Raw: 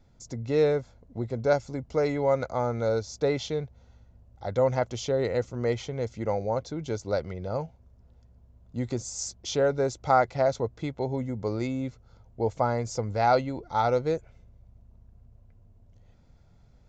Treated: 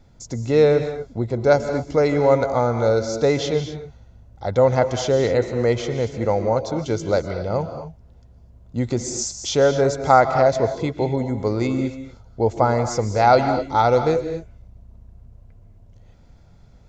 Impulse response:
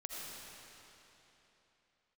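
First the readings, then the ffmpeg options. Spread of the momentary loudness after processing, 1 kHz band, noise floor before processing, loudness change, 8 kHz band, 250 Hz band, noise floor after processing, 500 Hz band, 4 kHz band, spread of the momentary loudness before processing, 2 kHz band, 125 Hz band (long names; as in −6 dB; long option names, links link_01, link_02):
12 LU, +8.0 dB, −58 dBFS, +8.0 dB, +8.5 dB, +8.5 dB, −49 dBFS, +8.0 dB, +8.5 dB, 10 LU, +8.5 dB, +8.0 dB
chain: -filter_complex "[0:a]asplit=2[link_01][link_02];[1:a]atrim=start_sample=2205,atrim=end_sample=6174,asetrate=22932,aresample=44100[link_03];[link_02][link_03]afir=irnorm=-1:irlink=0,volume=-1dB[link_04];[link_01][link_04]amix=inputs=2:normalize=0,volume=3dB"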